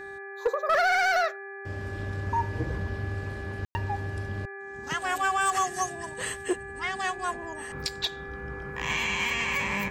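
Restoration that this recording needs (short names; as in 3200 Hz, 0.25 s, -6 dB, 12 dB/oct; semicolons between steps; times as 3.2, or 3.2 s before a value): clip repair -18 dBFS; de-hum 395.6 Hz, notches 6; notch 1700 Hz, Q 30; room tone fill 3.65–3.75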